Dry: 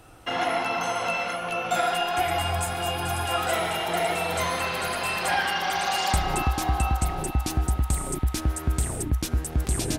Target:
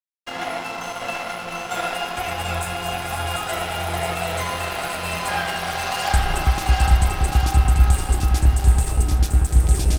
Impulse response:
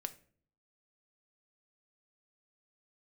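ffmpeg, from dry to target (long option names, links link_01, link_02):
-filter_complex "[0:a]aecho=1:1:740|1406|2005|2545|3030:0.631|0.398|0.251|0.158|0.1,asubboost=boost=3:cutoff=110[link_01];[1:a]atrim=start_sample=2205[link_02];[link_01][link_02]afir=irnorm=-1:irlink=0,aeval=exprs='sgn(val(0))*max(abs(val(0))-0.015,0)':channel_layout=same,volume=3dB"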